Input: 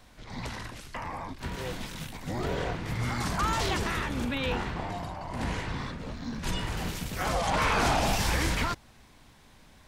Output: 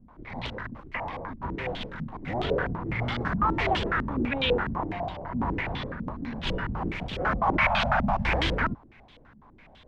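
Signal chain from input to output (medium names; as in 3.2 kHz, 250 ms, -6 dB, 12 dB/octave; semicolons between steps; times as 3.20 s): 7.57–8.25 s: Chebyshev band-stop 240–550 Hz, order 5; step-sequenced low-pass 12 Hz 230–3300 Hz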